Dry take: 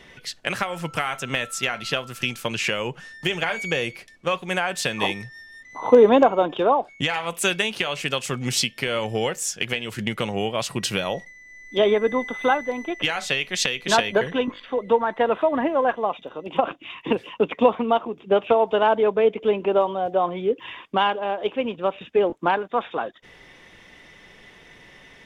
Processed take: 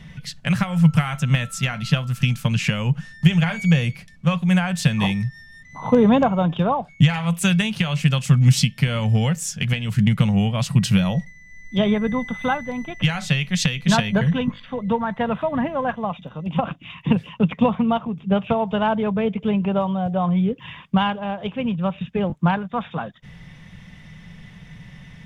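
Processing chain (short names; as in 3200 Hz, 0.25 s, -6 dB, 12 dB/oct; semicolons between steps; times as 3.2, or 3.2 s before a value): resonant low shelf 240 Hz +13 dB, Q 3; gain -1 dB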